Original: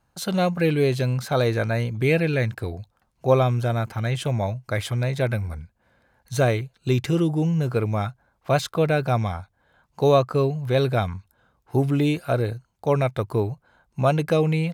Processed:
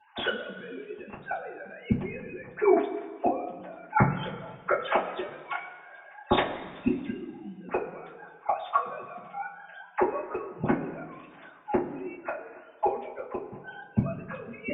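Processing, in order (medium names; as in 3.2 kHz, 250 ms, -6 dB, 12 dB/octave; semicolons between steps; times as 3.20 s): formants replaced by sine waves; in parallel at +2 dB: compression 10:1, threshold -29 dBFS, peak gain reduction 19.5 dB; on the sum: inverted gate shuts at -18 dBFS, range -31 dB; two-slope reverb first 0.2 s, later 1.7 s, from -18 dB, DRR -10 dB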